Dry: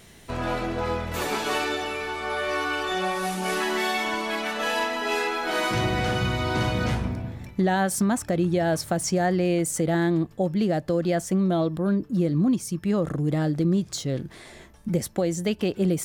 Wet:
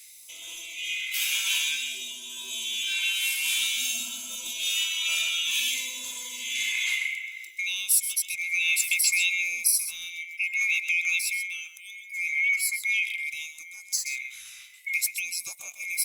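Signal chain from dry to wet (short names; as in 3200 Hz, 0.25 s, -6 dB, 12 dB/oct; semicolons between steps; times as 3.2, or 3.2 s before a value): band-swap scrambler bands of 2000 Hz; 1.18–1.68 bell 360 Hz -9.5 dB 0.81 oct; on a send: echo 0.129 s -10 dB; on the sum: phaser stages 2, 0.53 Hz, lowest notch 370–2100 Hz; pre-emphasis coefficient 0.97; gain +6.5 dB; Opus 64 kbps 48000 Hz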